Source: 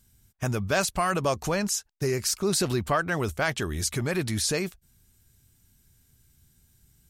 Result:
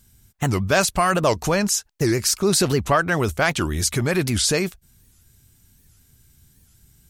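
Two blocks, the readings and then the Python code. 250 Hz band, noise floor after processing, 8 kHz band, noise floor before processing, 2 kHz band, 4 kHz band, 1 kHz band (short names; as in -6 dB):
+7.0 dB, -58 dBFS, +6.5 dB, -65 dBFS, +6.5 dB, +7.0 dB, +6.5 dB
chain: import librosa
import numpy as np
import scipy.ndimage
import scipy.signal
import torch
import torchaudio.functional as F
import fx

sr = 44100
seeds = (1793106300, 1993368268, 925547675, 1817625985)

y = fx.record_warp(x, sr, rpm=78.0, depth_cents=250.0)
y = F.gain(torch.from_numpy(y), 6.5).numpy()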